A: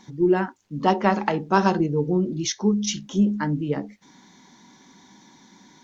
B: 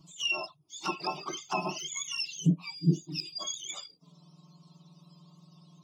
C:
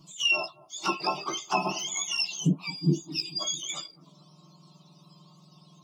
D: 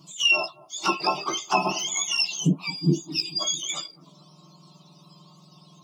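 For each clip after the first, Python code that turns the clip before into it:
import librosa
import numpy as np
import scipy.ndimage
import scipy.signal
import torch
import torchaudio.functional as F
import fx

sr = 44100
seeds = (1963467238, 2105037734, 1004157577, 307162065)

y1 = fx.octave_mirror(x, sr, pivot_hz=1000.0)
y1 = fx.fixed_phaser(y1, sr, hz=340.0, stages=8)
y1 = fx.env_flanger(y1, sr, rest_ms=6.6, full_db=-24.5)
y1 = y1 * 10.0 ** (-2.0 / 20.0)
y2 = fx.low_shelf(y1, sr, hz=200.0, db=-4.5)
y2 = fx.doubler(y2, sr, ms=15.0, db=-7.5)
y2 = fx.echo_bbd(y2, sr, ms=219, stages=2048, feedback_pct=66, wet_db=-21)
y2 = y2 * 10.0 ** (4.5 / 20.0)
y3 = fx.low_shelf(y2, sr, hz=77.0, db=-11.0)
y3 = y3 * 10.0 ** (4.5 / 20.0)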